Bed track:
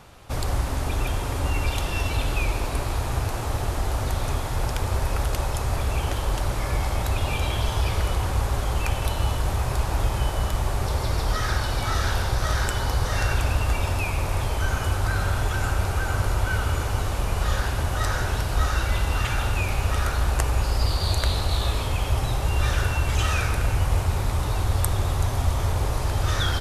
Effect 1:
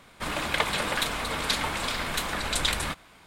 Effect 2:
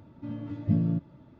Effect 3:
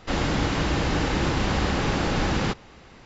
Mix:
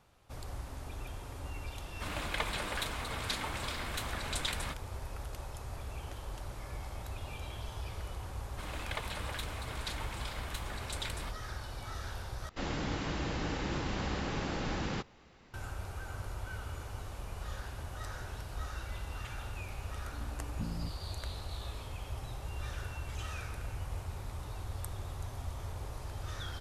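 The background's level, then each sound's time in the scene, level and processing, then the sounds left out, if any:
bed track -17.5 dB
1.8 add 1 -9.5 dB
8.37 add 1 -14 dB
12.49 replace with 3 -11.5 dB
19.9 add 2 -15.5 dB

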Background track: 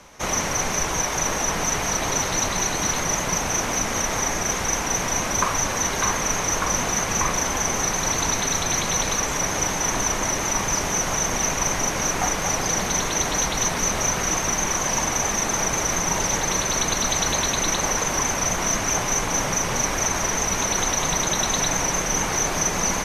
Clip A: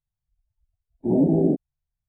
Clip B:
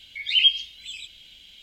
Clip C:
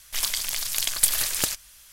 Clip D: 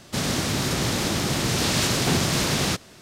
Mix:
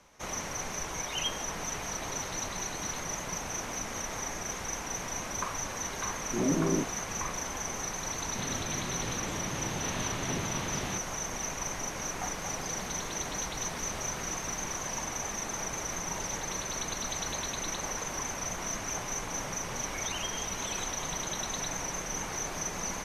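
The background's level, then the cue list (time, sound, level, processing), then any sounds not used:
background track -12.5 dB
0.8 add B -11 dB + LPF 1700 Hz 6 dB/oct
5.28 add A -9.5 dB
8.22 add D -13 dB + inverse Chebyshev low-pass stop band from 7100 Hz
12.12 add D -16.5 dB + compressor, threshold -31 dBFS
19.79 add B -4 dB + compressor, threshold -35 dBFS
not used: C

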